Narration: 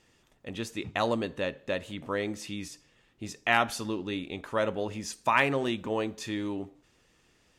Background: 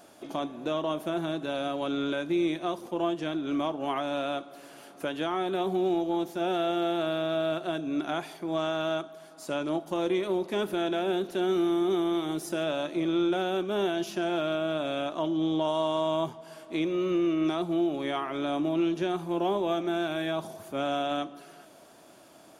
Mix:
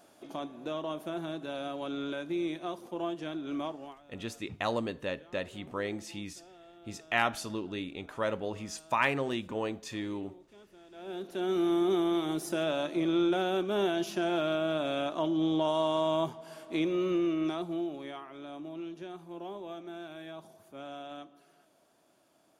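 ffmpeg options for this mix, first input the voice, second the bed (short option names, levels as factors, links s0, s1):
-filter_complex "[0:a]adelay=3650,volume=0.668[s0];[1:a]volume=10,afade=t=out:st=3.66:d=0.31:silence=0.0891251,afade=t=in:st=10.91:d=0.83:silence=0.0501187,afade=t=out:st=16.89:d=1.37:silence=0.223872[s1];[s0][s1]amix=inputs=2:normalize=0"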